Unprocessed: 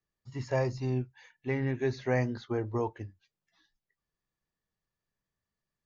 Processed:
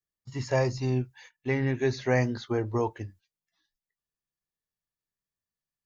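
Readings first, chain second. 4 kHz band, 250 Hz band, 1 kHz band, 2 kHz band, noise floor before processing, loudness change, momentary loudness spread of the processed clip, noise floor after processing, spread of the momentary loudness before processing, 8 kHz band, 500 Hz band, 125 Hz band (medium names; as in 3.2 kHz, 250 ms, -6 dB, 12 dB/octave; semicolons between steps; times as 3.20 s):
+7.5 dB, +3.5 dB, +4.0 dB, +5.0 dB, under -85 dBFS, +3.5 dB, 14 LU, under -85 dBFS, 14 LU, no reading, +3.5 dB, +3.5 dB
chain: gate -55 dBFS, range -13 dB; treble shelf 3.8 kHz +7.5 dB; trim +3.5 dB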